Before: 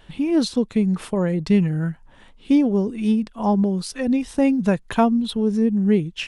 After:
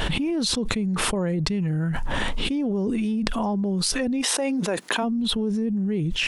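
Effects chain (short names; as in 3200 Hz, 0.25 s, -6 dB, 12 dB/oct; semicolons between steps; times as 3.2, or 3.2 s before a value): 4.21–5.02 HPF 450 Hz -> 210 Hz 24 dB/oct; fast leveller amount 100%; gain -11 dB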